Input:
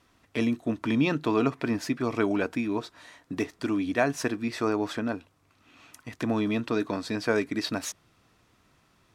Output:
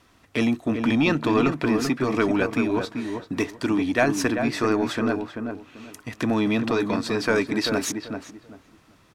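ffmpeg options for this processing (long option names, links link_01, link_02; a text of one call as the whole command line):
ffmpeg -i in.wav -filter_complex "[0:a]acrossover=split=1100[link_01][link_02];[link_01]asoftclip=type=tanh:threshold=-21.5dB[link_03];[link_03][link_02]amix=inputs=2:normalize=0,asplit=2[link_04][link_05];[link_05]adelay=388,lowpass=frequency=1400:poles=1,volume=-5.5dB,asplit=2[link_06][link_07];[link_07]adelay=388,lowpass=frequency=1400:poles=1,volume=0.24,asplit=2[link_08][link_09];[link_09]adelay=388,lowpass=frequency=1400:poles=1,volume=0.24[link_10];[link_04][link_06][link_08][link_10]amix=inputs=4:normalize=0,volume=6dB" out.wav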